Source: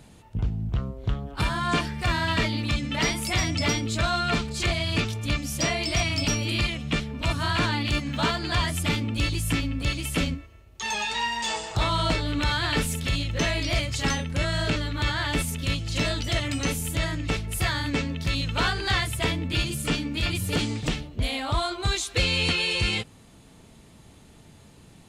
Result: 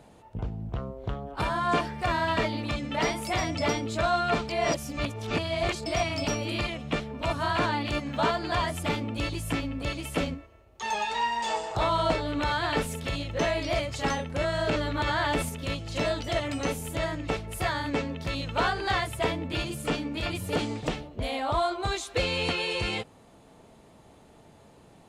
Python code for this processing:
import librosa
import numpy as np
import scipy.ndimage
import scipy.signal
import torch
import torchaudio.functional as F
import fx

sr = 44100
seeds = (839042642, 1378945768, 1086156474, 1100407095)

y = fx.env_flatten(x, sr, amount_pct=50, at=(14.68, 15.49))
y = fx.edit(y, sr, fx.reverse_span(start_s=4.49, length_s=1.37), tone=tone)
y = fx.peak_eq(y, sr, hz=660.0, db=12.5, octaves=2.3)
y = y * librosa.db_to_amplitude(-8.0)